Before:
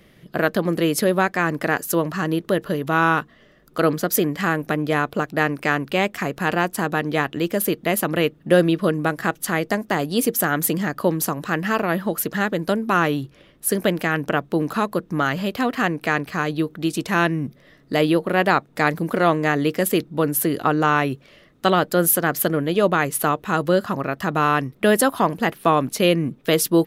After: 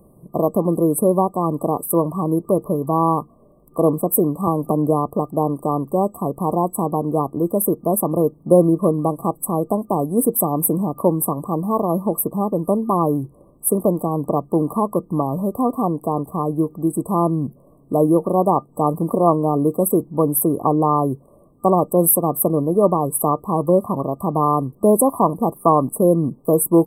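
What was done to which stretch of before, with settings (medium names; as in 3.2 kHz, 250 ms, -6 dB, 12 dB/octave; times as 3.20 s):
4.47–5.06 s: three bands compressed up and down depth 70%
whole clip: FFT band-reject 1.2–7.9 kHz; trim +3 dB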